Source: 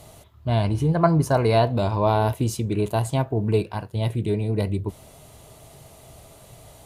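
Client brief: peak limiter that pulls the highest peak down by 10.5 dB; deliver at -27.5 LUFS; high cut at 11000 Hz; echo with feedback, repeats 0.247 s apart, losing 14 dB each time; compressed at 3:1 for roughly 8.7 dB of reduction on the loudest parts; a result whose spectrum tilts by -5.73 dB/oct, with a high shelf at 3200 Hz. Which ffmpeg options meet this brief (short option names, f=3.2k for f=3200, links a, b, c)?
-af "lowpass=11k,highshelf=f=3.2k:g=8.5,acompressor=threshold=-25dB:ratio=3,alimiter=limit=-23.5dB:level=0:latency=1,aecho=1:1:247|494:0.2|0.0399,volume=6dB"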